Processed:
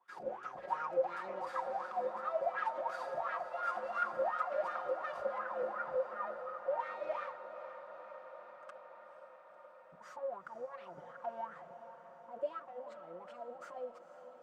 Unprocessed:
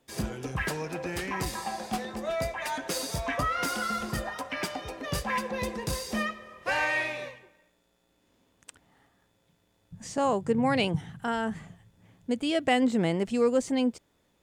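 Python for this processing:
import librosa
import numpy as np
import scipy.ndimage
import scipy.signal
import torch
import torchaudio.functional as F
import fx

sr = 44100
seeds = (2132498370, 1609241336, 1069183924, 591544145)

y = fx.lower_of_two(x, sr, delay_ms=5.5)
y = fx.lowpass(y, sr, hz=1900.0, slope=12, at=(5.38, 6.8))
y = fx.over_compress(y, sr, threshold_db=-35.0, ratio=-1.0)
y = fx.wah_lfo(y, sr, hz=2.8, low_hz=530.0, high_hz=1400.0, q=13.0)
y = fx.echo_diffused(y, sr, ms=488, feedback_pct=76, wet_db=-12)
y = y * librosa.db_to_amplitude(9.0)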